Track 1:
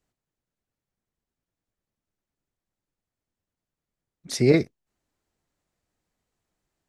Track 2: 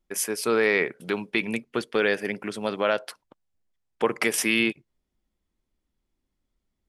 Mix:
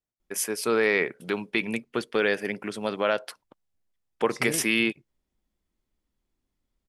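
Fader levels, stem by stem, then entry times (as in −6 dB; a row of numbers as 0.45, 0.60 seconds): −14.5, −1.0 decibels; 0.00, 0.20 seconds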